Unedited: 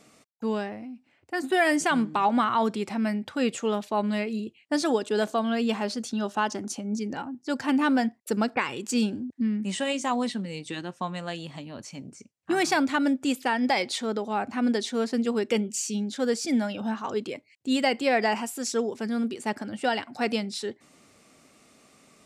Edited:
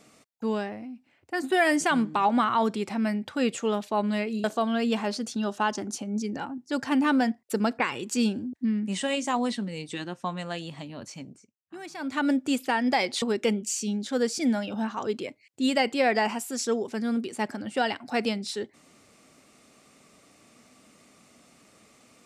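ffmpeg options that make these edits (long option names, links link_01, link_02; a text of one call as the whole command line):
ffmpeg -i in.wav -filter_complex "[0:a]asplit=5[link_01][link_02][link_03][link_04][link_05];[link_01]atrim=end=4.442[link_06];[link_02]atrim=start=5.208:end=12.25,asetpts=PTS-STARTPTS,afade=type=out:start_time=6.742:duration=0.3:silence=0.149624[link_07];[link_03]atrim=start=12.25:end=12.74,asetpts=PTS-STARTPTS,volume=-16.5dB[link_08];[link_04]atrim=start=12.74:end=13.992,asetpts=PTS-STARTPTS,afade=type=in:duration=0.3:silence=0.149624[link_09];[link_05]atrim=start=15.288[link_10];[link_07][link_08][link_09]concat=n=3:v=0:a=1[link_11];[link_06][link_11]acrossfade=duration=0.004:curve1=hsin:curve2=hsin[link_12];[link_12][link_10]acrossfade=duration=0.004:curve1=hsin:curve2=hsin" out.wav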